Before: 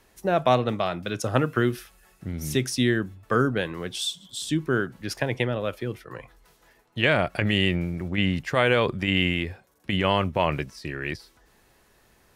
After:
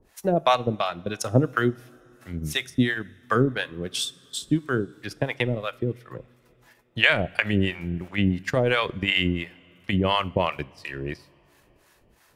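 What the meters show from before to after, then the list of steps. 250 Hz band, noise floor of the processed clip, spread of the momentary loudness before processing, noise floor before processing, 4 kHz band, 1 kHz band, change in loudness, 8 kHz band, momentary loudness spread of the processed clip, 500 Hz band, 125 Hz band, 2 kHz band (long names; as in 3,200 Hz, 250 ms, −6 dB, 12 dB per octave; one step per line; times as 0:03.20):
0.0 dB, −61 dBFS, 12 LU, −61 dBFS, +0.5 dB, 0.0 dB, 0.0 dB, −1.0 dB, 14 LU, −1.0 dB, 0.0 dB, +1.0 dB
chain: transient designer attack +3 dB, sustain −10 dB
two-band tremolo in antiphase 2.9 Hz, depth 100%, crossover 650 Hz
coupled-rooms reverb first 0.59 s, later 4.1 s, from −15 dB, DRR 19 dB
level +4 dB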